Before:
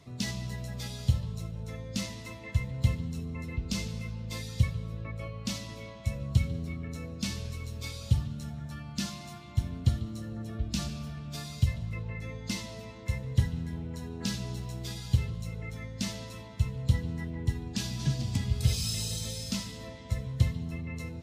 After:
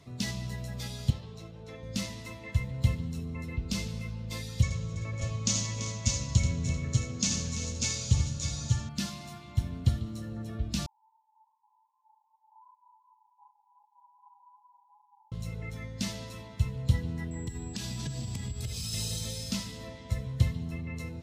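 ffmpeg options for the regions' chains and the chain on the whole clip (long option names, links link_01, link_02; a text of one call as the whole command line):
ffmpeg -i in.wav -filter_complex "[0:a]asettb=1/sr,asplit=3[link_01][link_02][link_03];[link_01]atrim=end=1.104[link_04];[link_02]atrim=start=1.1:end=1.83,asetpts=PTS-STARTPTS,afade=type=in:duration=0.004:curve=qsin,afade=type=out:start_time=0.726:duration=0.004:curve=qsin,acrossover=split=160 5800:gain=0.178 1 0.224[link_05][link_06][link_07];[link_05][link_06][link_07]amix=inputs=3:normalize=0,aecho=1:1:2.6:0.35,atrim=end_sample=32193[link_08];[link_03]atrim=start=1.826[link_09];[link_04][link_08]acrossfade=duration=0.004:curve1=hsin:curve2=qsin[link_10];[link_10][link_09]acrossfade=duration=0.004:curve1=qsin:curve2=hsin,asettb=1/sr,asplit=3[link_11][link_12][link_13];[link_11]atrim=end=4.624[link_14];[link_12]atrim=start=4.62:end=8.89,asetpts=PTS-STARTPTS,afade=type=in:duration=0.004:curve=qsin,afade=type=out:start_time=4.266:duration=0.004:curve=qsin,lowpass=frequency=6700:width_type=q:width=6.5,aecho=1:1:84|337|391|591|599:0.473|0.266|0.168|0.447|0.562,atrim=end_sample=188307[link_15];[link_13]atrim=start=8.886[link_16];[link_14][link_15]acrossfade=duration=0.004:curve1=hsin:curve2=qsin[link_17];[link_17][link_16]acrossfade=duration=0.004:curve1=qsin:curve2=hsin,asettb=1/sr,asplit=3[link_18][link_19][link_20];[link_18]atrim=end=10.864[link_21];[link_19]atrim=start=10.86:end=15.32,asetpts=PTS-STARTPTS,afade=type=in:duration=0.004:curve=qsin,afade=type=out:start_time=4.456:duration=0.004:curve=qsin,asuperpass=centerf=900:order=20:qfactor=4.2,flanger=delay=17.5:depth=4.1:speed=2.6[link_22];[link_20]atrim=start=15.316[link_23];[link_21][link_22]acrossfade=duration=0.004:curve1=hsin:curve2=qsin[link_24];[link_24][link_23]acrossfade=duration=0.004:curve1=qsin:curve2=hsin,asettb=1/sr,asplit=3[link_25][link_26][link_27];[link_25]atrim=end=17.314[link_28];[link_26]atrim=start=17.31:end=18.93,asetpts=PTS-STARTPTS,afade=type=in:duration=0.004:curve=qsin,afade=type=out:start_time=1.616:duration=0.004:curve=qsin,acompressor=threshold=-31dB:ratio=12:attack=3.2:release=140:knee=1:detection=peak,aeval=exprs='val(0)+0.00316*sin(2*PI*7700*n/s)':channel_layout=same[link_29];[link_27]atrim=start=18.926[link_30];[link_28][link_29]acrossfade=duration=0.004:curve1=hsin:curve2=qsin[link_31];[link_31][link_30]acrossfade=duration=0.004:curve1=qsin:curve2=hsin" out.wav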